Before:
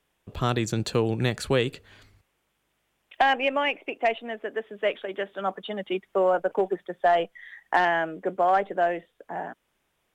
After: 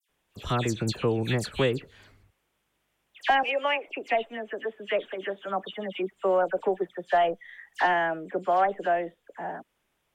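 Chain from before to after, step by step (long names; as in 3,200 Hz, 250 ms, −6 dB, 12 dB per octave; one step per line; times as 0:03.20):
0:03.34–0:03.79: high-pass filter 350 Hz 24 dB per octave
all-pass dispersion lows, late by 92 ms, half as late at 2,600 Hz
level −1.5 dB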